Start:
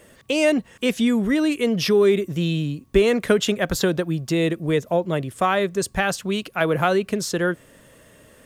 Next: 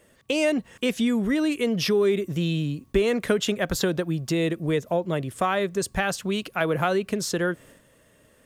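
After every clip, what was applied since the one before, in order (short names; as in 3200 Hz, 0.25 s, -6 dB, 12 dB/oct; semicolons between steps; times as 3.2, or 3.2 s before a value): compressor 1.5:1, threshold -26 dBFS, peak gain reduction 5.5 dB; gate -48 dBFS, range -8 dB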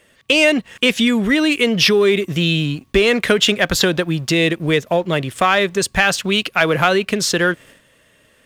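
bell 2800 Hz +9.5 dB 2.1 oct; sample leveller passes 1; gain +2.5 dB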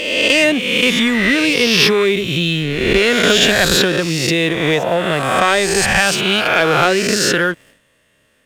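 spectral swells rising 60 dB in 1.37 s; sample leveller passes 1; gain -5 dB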